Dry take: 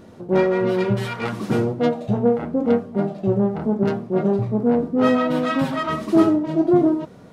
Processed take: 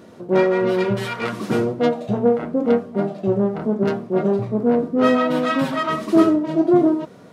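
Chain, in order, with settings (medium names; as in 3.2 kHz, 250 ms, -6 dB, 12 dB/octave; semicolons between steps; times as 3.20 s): high-pass 73 Hz; bass shelf 130 Hz -10.5 dB; band-stop 830 Hz, Q 12; trim +2.5 dB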